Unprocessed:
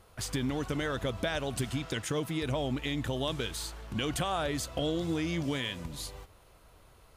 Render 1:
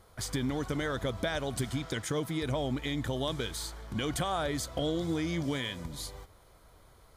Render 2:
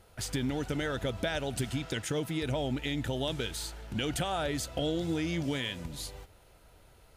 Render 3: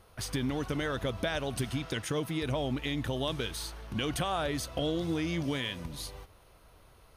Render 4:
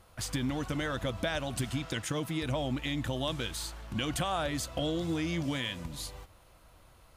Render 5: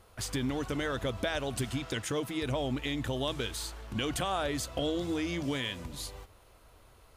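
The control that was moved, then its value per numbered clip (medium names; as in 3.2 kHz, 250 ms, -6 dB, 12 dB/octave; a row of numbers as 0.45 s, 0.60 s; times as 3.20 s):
band-stop, frequency: 2.7 kHz, 1.1 kHz, 7.4 kHz, 420 Hz, 160 Hz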